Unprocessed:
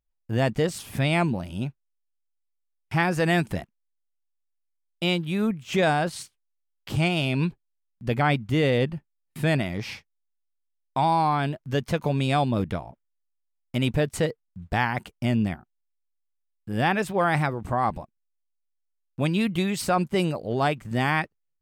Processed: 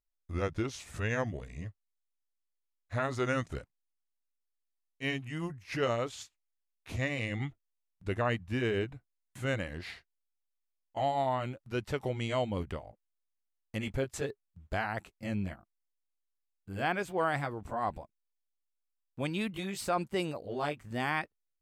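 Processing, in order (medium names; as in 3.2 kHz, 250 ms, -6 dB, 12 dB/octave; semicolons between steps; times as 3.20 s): pitch bend over the whole clip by -5.5 st ending unshifted; peaking EQ 160 Hz -6.5 dB 0.96 oct; trim -6.5 dB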